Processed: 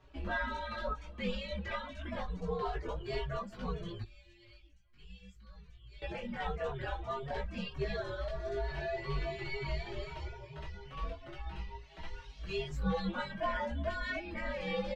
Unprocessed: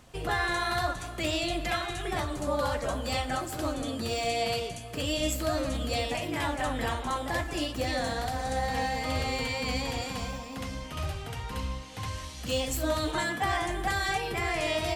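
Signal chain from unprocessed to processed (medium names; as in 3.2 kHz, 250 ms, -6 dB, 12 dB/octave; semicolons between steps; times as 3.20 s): reverb removal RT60 0.81 s; 4.02–6.02 s: amplifier tone stack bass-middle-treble 6-0-2; frequency shift -120 Hz; chorus voices 4, 0.28 Hz, delay 18 ms, depth 3.1 ms; distance through air 220 m; endless flanger 5 ms +2.2 Hz; trim +1 dB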